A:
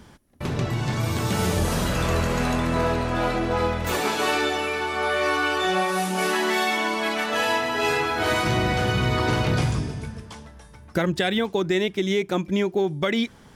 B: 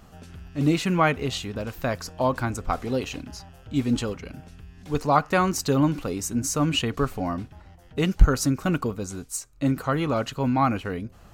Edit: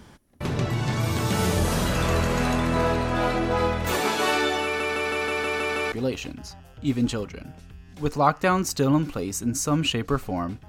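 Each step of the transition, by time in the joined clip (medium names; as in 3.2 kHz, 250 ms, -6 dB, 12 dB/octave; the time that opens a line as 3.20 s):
A
4.64 s: stutter in place 0.16 s, 8 plays
5.92 s: go over to B from 2.81 s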